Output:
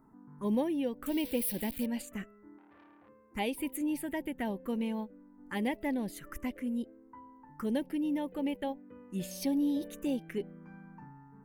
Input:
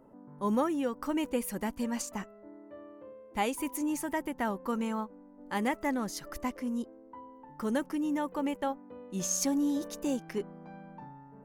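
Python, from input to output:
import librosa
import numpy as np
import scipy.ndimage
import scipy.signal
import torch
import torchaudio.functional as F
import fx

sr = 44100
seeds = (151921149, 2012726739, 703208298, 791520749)

y = fx.crossing_spikes(x, sr, level_db=-28.5, at=(1.06, 1.86))
y = fx.env_phaser(y, sr, low_hz=540.0, high_hz=1300.0, full_db=-28.5)
y = fx.transformer_sat(y, sr, knee_hz=1400.0, at=(2.58, 3.09))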